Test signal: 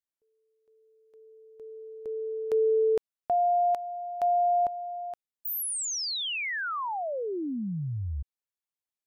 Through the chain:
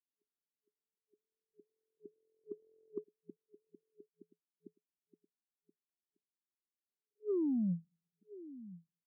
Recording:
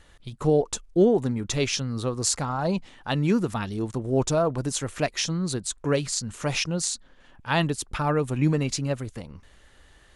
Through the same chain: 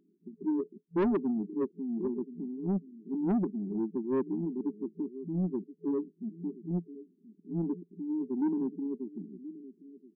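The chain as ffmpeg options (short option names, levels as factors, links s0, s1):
-af "aecho=1:1:1027:0.133,afftfilt=real='re*between(b*sr/4096,170,430)':imag='im*between(b*sr/4096,170,430)':win_size=4096:overlap=0.75,asoftclip=type=tanh:threshold=0.0668"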